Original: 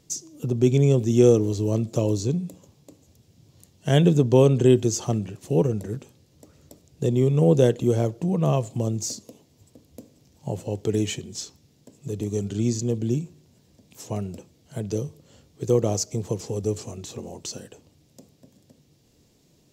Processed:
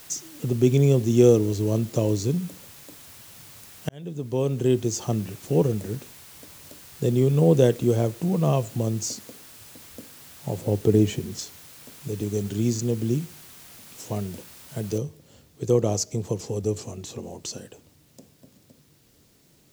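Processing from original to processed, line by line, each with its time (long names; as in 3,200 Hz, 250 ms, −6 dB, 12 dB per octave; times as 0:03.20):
0:03.89–0:05.26: fade in
0:10.61–0:11.39: tilt shelving filter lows +6 dB, about 1,300 Hz
0:14.98: noise floor change −47 dB −64 dB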